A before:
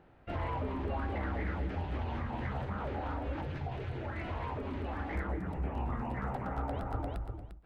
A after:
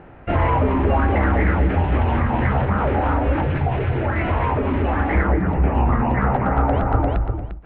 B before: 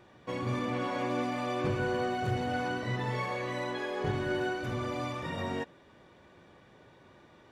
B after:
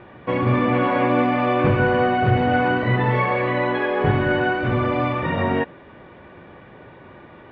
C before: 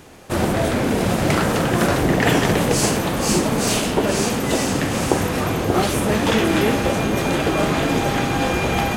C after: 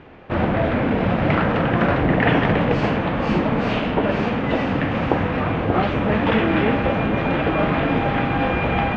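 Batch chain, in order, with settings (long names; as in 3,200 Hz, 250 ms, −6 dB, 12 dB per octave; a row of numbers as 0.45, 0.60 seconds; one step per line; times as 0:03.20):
low-pass filter 2,800 Hz 24 dB per octave
dynamic equaliser 380 Hz, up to −7 dB, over −39 dBFS, Q 6.3
loudness normalisation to −20 LKFS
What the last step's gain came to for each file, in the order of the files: +17.5, +14.0, +0.5 decibels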